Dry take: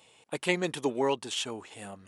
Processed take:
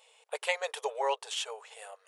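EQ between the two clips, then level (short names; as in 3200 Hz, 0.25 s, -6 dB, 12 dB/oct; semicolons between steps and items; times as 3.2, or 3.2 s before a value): dynamic EQ 760 Hz, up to +4 dB, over -40 dBFS, Q 1.1; brick-wall FIR high-pass 420 Hz; -2.0 dB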